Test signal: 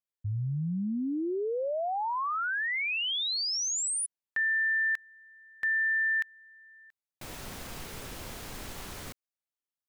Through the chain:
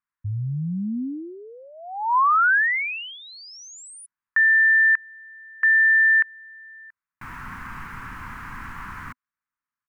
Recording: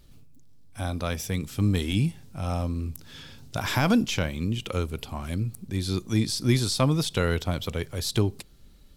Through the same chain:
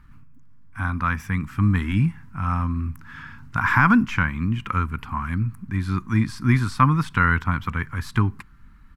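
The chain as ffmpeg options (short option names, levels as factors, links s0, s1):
-af "firequalizer=gain_entry='entry(250,0);entry(380,-13);entry(590,-19);entry(1000,9);entry(1600,9);entry(3500,-16)':delay=0.05:min_phase=1,volume=1.68"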